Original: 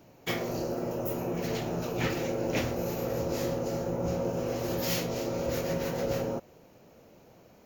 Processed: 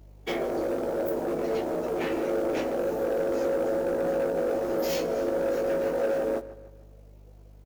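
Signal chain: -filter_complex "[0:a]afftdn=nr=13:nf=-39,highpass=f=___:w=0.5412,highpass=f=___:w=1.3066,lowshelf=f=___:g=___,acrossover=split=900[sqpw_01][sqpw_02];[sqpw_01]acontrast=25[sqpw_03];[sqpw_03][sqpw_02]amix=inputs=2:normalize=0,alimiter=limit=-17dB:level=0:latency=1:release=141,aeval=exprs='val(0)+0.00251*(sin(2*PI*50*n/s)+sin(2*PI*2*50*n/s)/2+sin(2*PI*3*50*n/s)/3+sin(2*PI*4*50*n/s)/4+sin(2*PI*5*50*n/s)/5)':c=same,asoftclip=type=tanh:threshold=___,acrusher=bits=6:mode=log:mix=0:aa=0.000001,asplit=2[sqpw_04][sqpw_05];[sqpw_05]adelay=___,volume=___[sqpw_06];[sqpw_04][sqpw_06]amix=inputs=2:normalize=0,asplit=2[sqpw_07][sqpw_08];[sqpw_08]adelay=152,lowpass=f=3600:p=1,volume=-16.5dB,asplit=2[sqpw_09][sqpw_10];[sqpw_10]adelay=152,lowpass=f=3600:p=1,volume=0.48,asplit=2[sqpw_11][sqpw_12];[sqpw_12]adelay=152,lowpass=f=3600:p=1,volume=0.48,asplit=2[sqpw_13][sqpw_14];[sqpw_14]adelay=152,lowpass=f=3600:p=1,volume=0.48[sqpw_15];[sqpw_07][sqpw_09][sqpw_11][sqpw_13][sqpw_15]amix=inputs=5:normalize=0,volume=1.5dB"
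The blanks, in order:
280, 280, 400, 4, -26dB, 18, -5.5dB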